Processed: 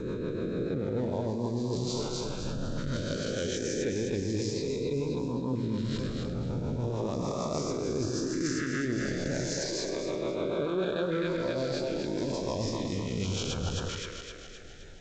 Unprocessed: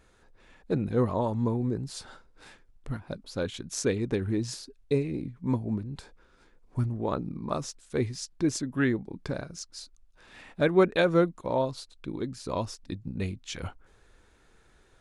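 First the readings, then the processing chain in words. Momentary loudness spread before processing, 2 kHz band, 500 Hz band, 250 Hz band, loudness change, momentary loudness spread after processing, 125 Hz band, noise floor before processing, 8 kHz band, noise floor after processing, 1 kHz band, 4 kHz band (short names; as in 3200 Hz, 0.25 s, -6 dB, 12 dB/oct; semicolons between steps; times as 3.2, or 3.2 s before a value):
15 LU, -2.0 dB, -1.0 dB, -1.0 dB, -2.0 dB, 4 LU, -1.0 dB, -62 dBFS, +2.0 dB, -43 dBFS, -4.0 dB, +4.0 dB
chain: spectral swells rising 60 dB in 2.37 s; rotary speaker horn 6.7 Hz; on a send: split-band echo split 340 Hz, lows 0.103 s, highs 0.26 s, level -6.5 dB; on the sum: LFO notch saw up 0.36 Hz 720–2200 Hz; reverse; compressor 6:1, threshold -38 dBFS, peak gain reduction 21 dB; reverse; gain +9 dB; G.722 64 kbps 16000 Hz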